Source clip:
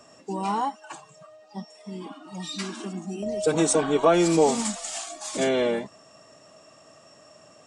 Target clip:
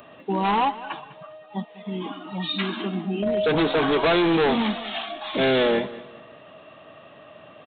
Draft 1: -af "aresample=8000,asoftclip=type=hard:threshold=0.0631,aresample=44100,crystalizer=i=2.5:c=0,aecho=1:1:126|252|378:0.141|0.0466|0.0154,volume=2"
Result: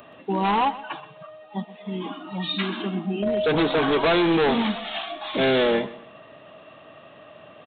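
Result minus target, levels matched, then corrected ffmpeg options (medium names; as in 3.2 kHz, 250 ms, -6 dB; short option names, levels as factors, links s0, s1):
echo 74 ms early
-af "aresample=8000,asoftclip=type=hard:threshold=0.0631,aresample=44100,crystalizer=i=2.5:c=0,aecho=1:1:200|400|600:0.141|0.0466|0.0154,volume=2"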